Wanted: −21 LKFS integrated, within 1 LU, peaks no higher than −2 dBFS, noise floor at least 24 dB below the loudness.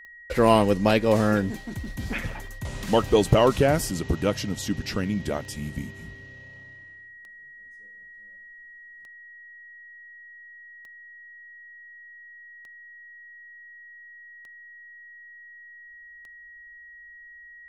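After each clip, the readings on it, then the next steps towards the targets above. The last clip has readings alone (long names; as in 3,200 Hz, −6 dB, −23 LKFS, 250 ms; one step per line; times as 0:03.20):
number of clicks 10; interfering tone 1,900 Hz; level of the tone −44 dBFS; integrated loudness −24.0 LKFS; sample peak −5.5 dBFS; target loudness −21.0 LKFS
→ click removal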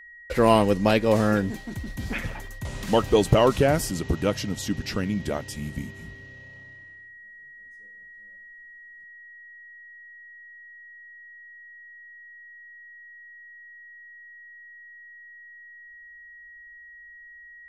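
number of clicks 0; interfering tone 1,900 Hz; level of the tone −44 dBFS
→ notch filter 1,900 Hz, Q 30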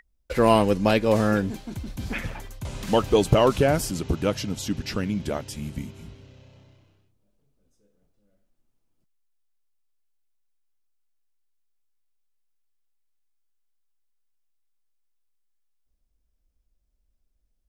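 interfering tone none found; integrated loudness −23.5 LKFS; sample peak −5.5 dBFS; target loudness −21.0 LKFS
→ level +2.5 dB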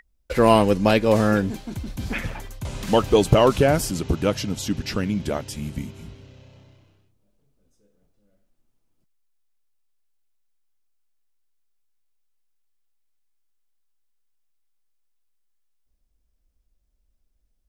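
integrated loudness −21.5 LKFS; sample peak −3.0 dBFS; background noise floor −70 dBFS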